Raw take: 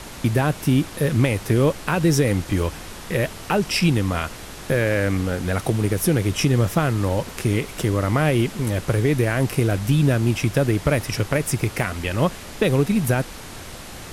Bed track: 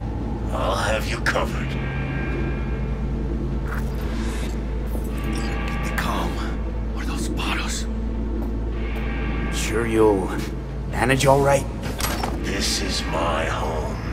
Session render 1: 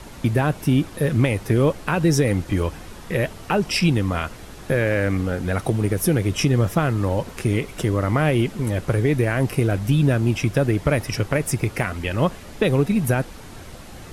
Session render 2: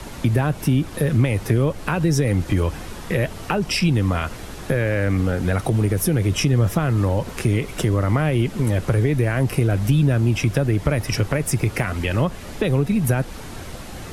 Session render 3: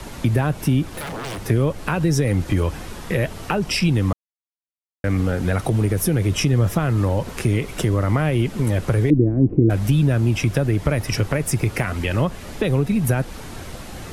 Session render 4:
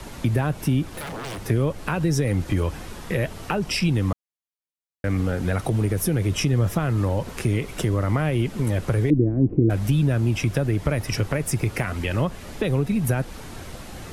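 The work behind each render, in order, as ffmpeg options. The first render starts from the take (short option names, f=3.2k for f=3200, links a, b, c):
-af "afftdn=nr=7:nf=-37"
-filter_complex "[0:a]asplit=2[a][b];[b]alimiter=limit=-14.5dB:level=0:latency=1:release=32,volume=-2.5dB[c];[a][c]amix=inputs=2:normalize=0,acrossover=split=140[d][e];[e]acompressor=threshold=-21dB:ratio=2.5[f];[d][f]amix=inputs=2:normalize=0"
-filter_complex "[0:a]asettb=1/sr,asplit=3[a][b][c];[a]atrim=end=0.834[d];[b]atrim=start=0.83:end=1.46,asetpts=PTS-STARTPTS,afade=t=in:d=0.004:c=qsin,afade=t=out:st=0.626:d=0.004:c=qsin,aeval=exprs='0.0596*(abs(mod(val(0)/0.0596+3,4)-2)-1)':c=same[e];[c]atrim=start=1.456[f];[d][e]acrossfade=d=0.004:c1=hsin:c2=qsin[g];[g][f]acrossfade=d=0.004:c1=qsin:c2=hsin,asettb=1/sr,asplit=3[h][i][j];[h]atrim=end=9.104[k];[i]atrim=start=9.1:end=9.7,asetpts=PTS-STARTPTS,afade=t=in:d=0.004:c=qsin,afade=t=out:st=0.596:d=0.004:c=qsin,lowpass=f=310:t=q:w=3.7[l];[j]atrim=start=9.696[m];[k][l]acrossfade=d=0.004:c1=hsin:c2=qsin[n];[n][m]acrossfade=d=0.004:c1=qsin:c2=hsin,asplit=3[o][p][q];[o]atrim=end=4.13,asetpts=PTS-STARTPTS,afade=t=out:st=4.126:d=0.004:c=hsin[r];[p]atrim=start=4.13:end=5.04,asetpts=PTS-STARTPTS,volume=0[s];[q]atrim=start=5.04,asetpts=PTS-STARTPTS,afade=t=in:d=0.004:c=hsin[t];[r][s][t]concat=n=3:v=0:a=1"
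-af "volume=-3dB"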